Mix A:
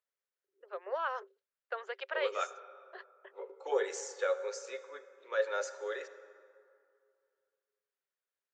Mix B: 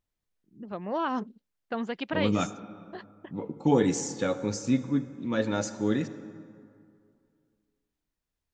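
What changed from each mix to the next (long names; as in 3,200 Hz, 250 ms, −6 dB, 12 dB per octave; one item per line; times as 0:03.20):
master: remove Chebyshev high-pass with heavy ripple 380 Hz, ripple 9 dB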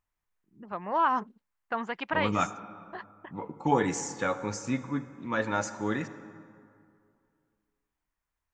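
master: add octave-band graphic EQ 125/250/500/1,000/2,000/4,000 Hz −3/−5/−4/+8/+4/−6 dB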